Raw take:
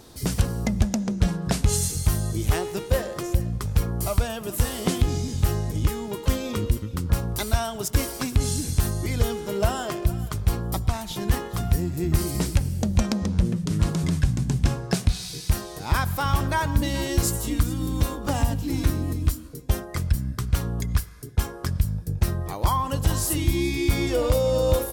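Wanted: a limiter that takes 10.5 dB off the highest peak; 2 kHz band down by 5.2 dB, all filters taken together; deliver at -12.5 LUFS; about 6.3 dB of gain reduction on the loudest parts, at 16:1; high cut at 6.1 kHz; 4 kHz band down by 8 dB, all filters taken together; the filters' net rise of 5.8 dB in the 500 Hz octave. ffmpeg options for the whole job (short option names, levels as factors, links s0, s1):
-af "lowpass=6100,equalizer=f=500:t=o:g=7,equalizer=f=2000:t=o:g=-5.5,equalizer=f=4000:t=o:g=-8,acompressor=threshold=0.1:ratio=16,volume=6.68,alimiter=limit=0.841:level=0:latency=1"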